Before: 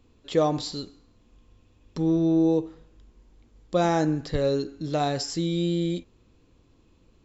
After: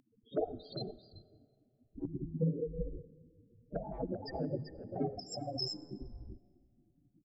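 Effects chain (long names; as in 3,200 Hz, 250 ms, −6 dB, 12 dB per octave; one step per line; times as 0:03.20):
spectral peaks only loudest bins 4
treble cut that deepens with the level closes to 1,500 Hz, closed at −22.5 dBFS
single-tap delay 388 ms −9 dB
gate on every frequency bin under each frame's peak −20 dB weak
convolution reverb RT60 2.4 s, pre-delay 45 ms, DRR 19.5 dB
level +15 dB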